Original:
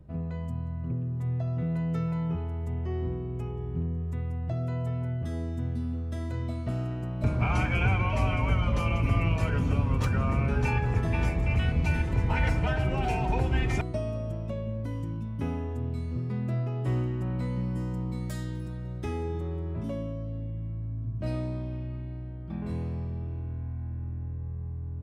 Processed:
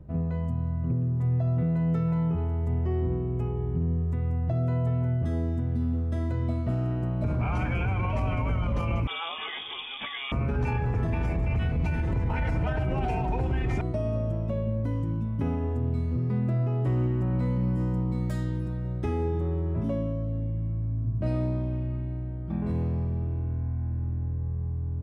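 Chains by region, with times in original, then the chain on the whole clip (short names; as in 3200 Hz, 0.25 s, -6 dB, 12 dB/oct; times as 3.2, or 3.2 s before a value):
9.07–10.32 HPF 570 Hz 6 dB/oct + inverted band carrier 3500 Hz
whole clip: high shelf 2400 Hz -11 dB; limiter -24.5 dBFS; gain +5 dB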